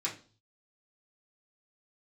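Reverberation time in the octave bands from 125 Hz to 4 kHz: 0.80, 0.45, 0.40, 0.35, 0.30, 0.40 s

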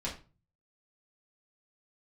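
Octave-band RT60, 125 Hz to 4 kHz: 0.70, 0.45, 0.35, 0.30, 0.30, 0.25 s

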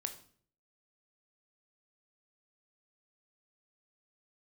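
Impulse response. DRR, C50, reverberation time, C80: 6.5 dB, 11.5 dB, 0.55 s, 15.5 dB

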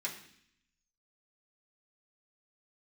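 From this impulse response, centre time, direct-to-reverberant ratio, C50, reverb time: 21 ms, -5.0 dB, 9.0 dB, 0.65 s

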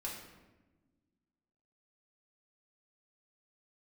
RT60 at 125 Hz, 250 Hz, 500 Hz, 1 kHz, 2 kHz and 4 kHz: 2.0, 2.1, 1.3, 1.0, 0.95, 0.75 s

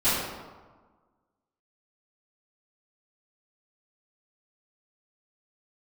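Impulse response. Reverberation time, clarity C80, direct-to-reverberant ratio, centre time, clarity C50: 1.4 s, 1.5 dB, -17.0 dB, 93 ms, -1.5 dB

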